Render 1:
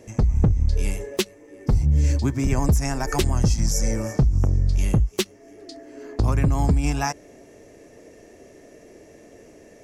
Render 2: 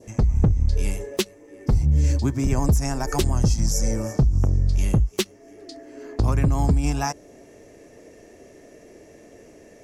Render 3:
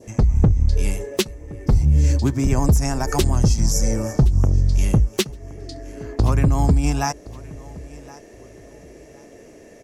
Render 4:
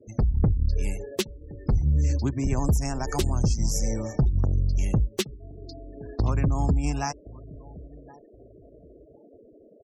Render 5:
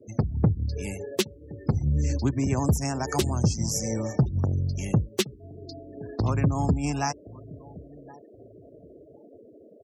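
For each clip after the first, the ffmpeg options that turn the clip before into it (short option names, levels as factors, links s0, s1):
-af "adynamicequalizer=threshold=0.00447:dfrequency=2100:dqfactor=1.3:tfrequency=2100:tqfactor=1.3:attack=5:release=100:ratio=0.375:range=2.5:mode=cutabove:tftype=bell"
-af "aecho=1:1:1069|2138:0.0944|0.0236,volume=1.41"
-af "afftfilt=real='re*gte(hypot(re,im),0.0178)':imag='im*gte(hypot(re,im),0.0178)':win_size=1024:overlap=0.75,volume=0.473"
-af "highpass=f=82:w=0.5412,highpass=f=82:w=1.3066,volume=1.26"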